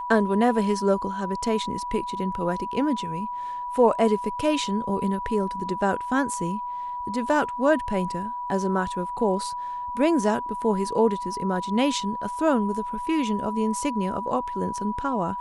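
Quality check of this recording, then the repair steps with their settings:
tone 980 Hz -29 dBFS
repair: notch 980 Hz, Q 30

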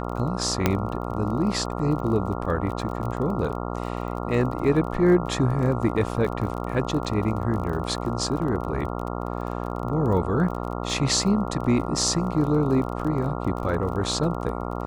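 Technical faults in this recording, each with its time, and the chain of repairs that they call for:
buzz 60 Hz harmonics 23 -30 dBFS
crackle 29/s -32 dBFS
0.66 pop -5 dBFS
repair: de-click; de-hum 60 Hz, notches 23

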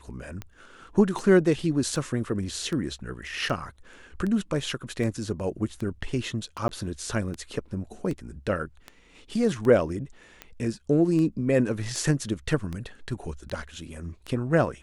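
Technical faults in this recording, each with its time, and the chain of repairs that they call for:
tick 78 rpm -21 dBFS
6.68–6.69 gap 11 ms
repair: de-click; interpolate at 6.68, 11 ms

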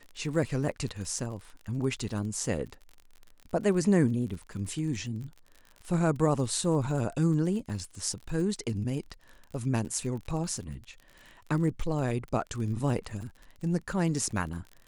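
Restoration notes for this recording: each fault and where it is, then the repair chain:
crackle 43/s -38 dBFS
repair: de-click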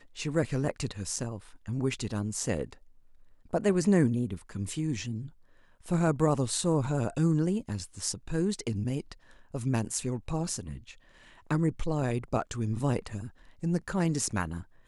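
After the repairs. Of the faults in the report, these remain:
none

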